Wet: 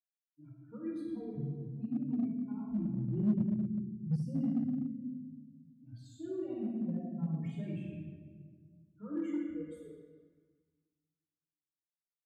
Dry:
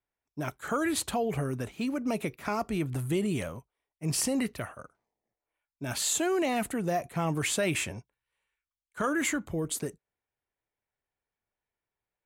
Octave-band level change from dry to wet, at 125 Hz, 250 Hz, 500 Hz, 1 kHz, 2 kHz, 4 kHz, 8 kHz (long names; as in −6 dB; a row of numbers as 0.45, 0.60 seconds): −2.5 dB, −2.0 dB, −13.5 dB, −24.0 dB, below −25 dB, below −25 dB, below −35 dB